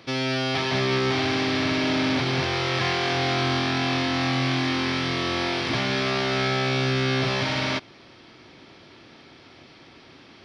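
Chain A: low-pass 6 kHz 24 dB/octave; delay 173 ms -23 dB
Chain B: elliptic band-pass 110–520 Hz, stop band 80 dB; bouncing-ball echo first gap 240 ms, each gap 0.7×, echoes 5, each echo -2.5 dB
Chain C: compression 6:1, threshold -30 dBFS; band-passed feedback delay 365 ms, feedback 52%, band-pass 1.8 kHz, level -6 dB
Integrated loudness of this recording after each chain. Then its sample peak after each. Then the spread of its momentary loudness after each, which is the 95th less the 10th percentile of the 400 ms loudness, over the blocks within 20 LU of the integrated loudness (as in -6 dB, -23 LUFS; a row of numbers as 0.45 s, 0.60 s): -24.0 LUFS, -24.5 LUFS, -32.0 LUFS; -11.5 dBFS, -12.5 dBFS, -19.5 dBFS; 2 LU, 8 LU, 16 LU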